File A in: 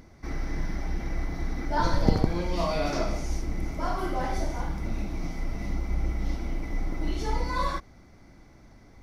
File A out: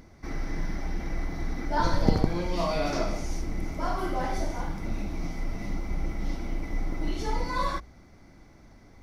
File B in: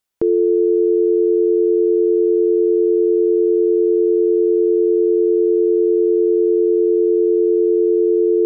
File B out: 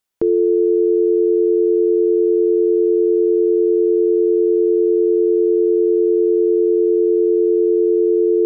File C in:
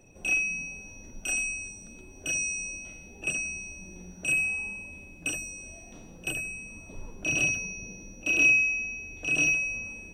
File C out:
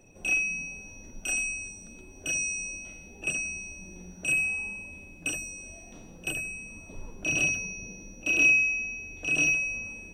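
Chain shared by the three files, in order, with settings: notches 60/120 Hz

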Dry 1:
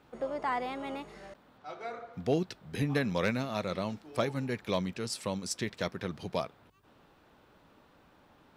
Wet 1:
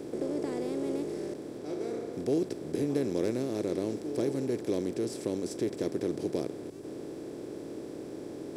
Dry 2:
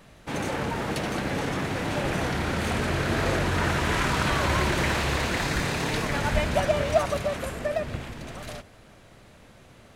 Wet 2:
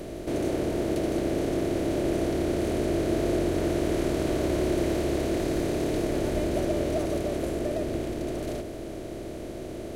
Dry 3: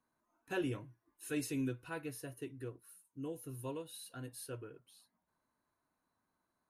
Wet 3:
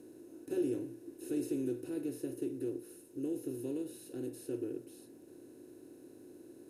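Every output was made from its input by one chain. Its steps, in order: per-bin compression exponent 0.4; EQ curve 200 Hz 0 dB, 340 Hz +13 dB, 1000 Hz -13 dB, 13000 Hz +2 dB; gain -9 dB

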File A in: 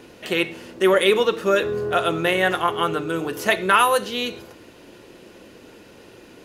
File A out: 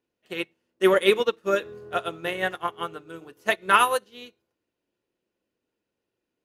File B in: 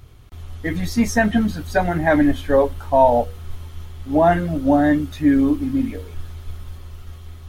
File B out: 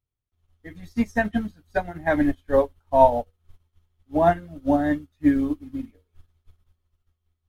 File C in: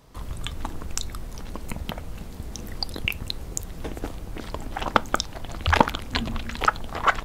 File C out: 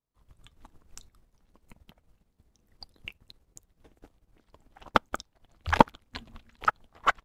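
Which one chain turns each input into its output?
upward expander 2.5:1, over -38 dBFS

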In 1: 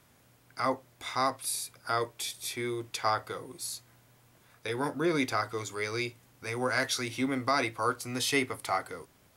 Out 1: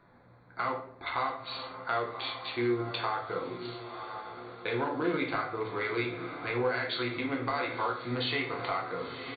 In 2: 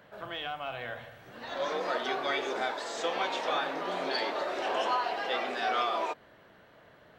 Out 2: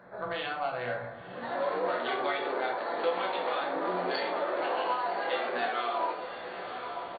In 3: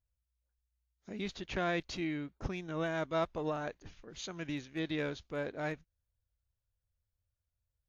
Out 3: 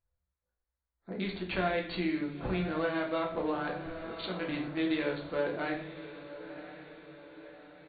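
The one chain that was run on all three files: Wiener smoothing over 15 samples; brick-wall FIR low-pass 4600 Hz; tilt +2.5 dB/oct; in parallel at 0 dB: limiter -22.5 dBFS; on the sum: high shelf 3200 Hz -9 dB; doubler 16 ms -11 dB; diffused feedback echo 1.026 s, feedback 51%, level -15.5 dB; compressor, threshold -31 dBFS; shoebox room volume 82 m³, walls mixed, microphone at 0.78 m

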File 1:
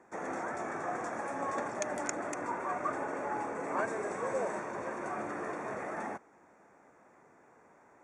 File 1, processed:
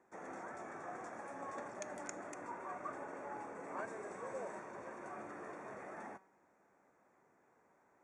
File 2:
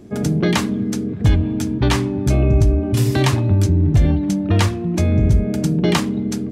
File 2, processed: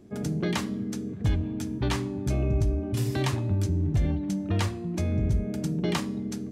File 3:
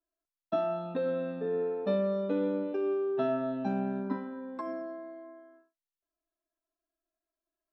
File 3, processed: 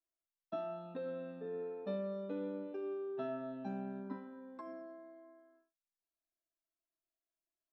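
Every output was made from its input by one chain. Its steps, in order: resonator 190 Hz, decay 0.66 s, harmonics all, mix 50%; gain -5 dB

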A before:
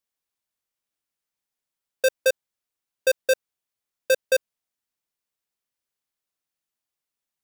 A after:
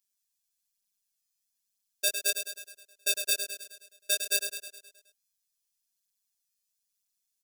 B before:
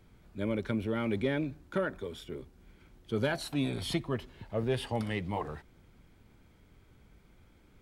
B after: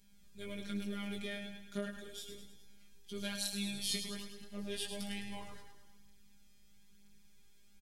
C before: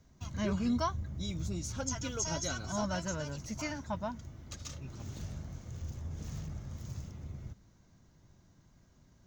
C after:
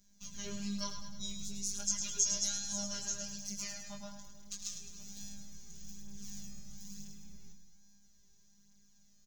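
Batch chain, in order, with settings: EQ curve 110 Hz 0 dB, 840 Hz -12 dB, 5900 Hz +11 dB; robotiser 202 Hz; feedback echo 0.105 s, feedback 55%, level -7.5 dB; chorus 0.38 Hz, delay 16 ms, depth 5.4 ms

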